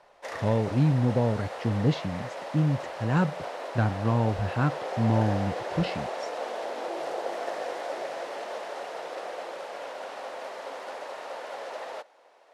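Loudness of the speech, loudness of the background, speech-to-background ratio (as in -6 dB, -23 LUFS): -27.5 LUFS, -36.0 LUFS, 8.5 dB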